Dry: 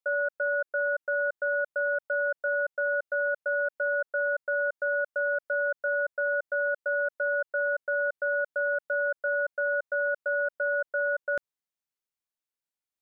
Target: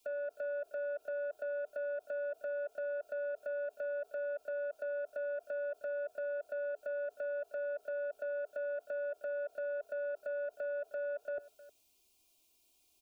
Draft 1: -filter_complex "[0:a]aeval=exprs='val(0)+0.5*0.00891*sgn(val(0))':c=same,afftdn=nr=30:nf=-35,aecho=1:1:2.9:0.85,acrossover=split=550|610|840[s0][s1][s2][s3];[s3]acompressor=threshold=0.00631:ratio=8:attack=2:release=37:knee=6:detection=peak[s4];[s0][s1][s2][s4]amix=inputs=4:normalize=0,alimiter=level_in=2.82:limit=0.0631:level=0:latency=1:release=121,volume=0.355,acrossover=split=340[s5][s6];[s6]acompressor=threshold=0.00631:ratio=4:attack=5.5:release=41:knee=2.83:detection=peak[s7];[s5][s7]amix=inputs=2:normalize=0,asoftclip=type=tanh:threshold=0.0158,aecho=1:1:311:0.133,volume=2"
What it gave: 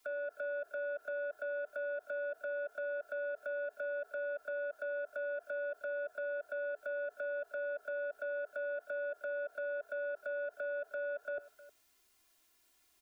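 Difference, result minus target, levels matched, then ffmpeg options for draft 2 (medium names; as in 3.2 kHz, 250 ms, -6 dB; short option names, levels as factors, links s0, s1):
1 kHz band +5.0 dB
-filter_complex "[0:a]aeval=exprs='val(0)+0.5*0.00891*sgn(val(0))':c=same,afftdn=nr=30:nf=-35,aecho=1:1:2.9:0.85,acrossover=split=550|610|840[s0][s1][s2][s3];[s3]acompressor=threshold=0.00631:ratio=8:attack=2:release=37:knee=6:detection=peak,asuperstop=centerf=1100:order=20:qfactor=0.64[s4];[s0][s1][s2][s4]amix=inputs=4:normalize=0,alimiter=level_in=2.82:limit=0.0631:level=0:latency=1:release=121,volume=0.355,acrossover=split=340[s5][s6];[s6]acompressor=threshold=0.00631:ratio=4:attack=5.5:release=41:knee=2.83:detection=peak[s7];[s5][s7]amix=inputs=2:normalize=0,asoftclip=type=tanh:threshold=0.0158,aecho=1:1:311:0.133,volume=2"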